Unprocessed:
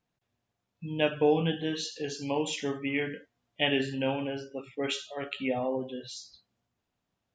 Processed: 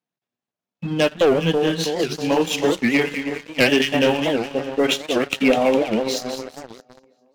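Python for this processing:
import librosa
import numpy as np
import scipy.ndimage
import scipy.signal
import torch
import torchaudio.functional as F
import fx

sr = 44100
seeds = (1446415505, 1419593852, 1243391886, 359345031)

y = fx.tracing_dist(x, sr, depth_ms=0.05)
y = scipy.signal.sosfilt(scipy.signal.butter(4, 150.0, 'highpass', fs=sr, output='sos'), y)
y = fx.transient(y, sr, attack_db=4, sustain_db=-10)
y = fx.echo_split(y, sr, split_hz=1700.0, low_ms=322, high_ms=204, feedback_pct=52, wet_db=-8.5)
y = fx.leveller(y, sr, passes=3)
y = fx.rider(y, sr, range_db=10, speed_s=2.0)
y = fx.record_warp(y, sr, rpm=78.0, depth_cents=250.0)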